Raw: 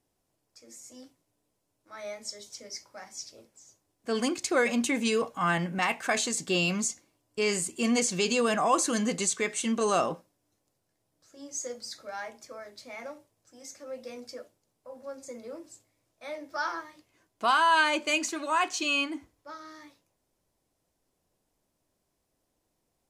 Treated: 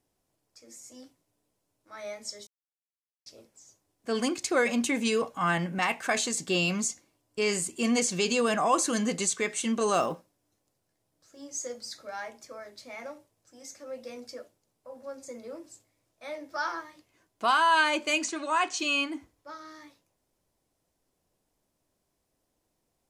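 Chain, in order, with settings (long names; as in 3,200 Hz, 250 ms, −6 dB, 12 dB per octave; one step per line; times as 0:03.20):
0:02.47–0:03.26: silence
0:09.94–0:11.47: one scale factor per block 7 bits
0:18.24–0:18.79: Butterworth low-pass 9,700 Hz 48 dB per octave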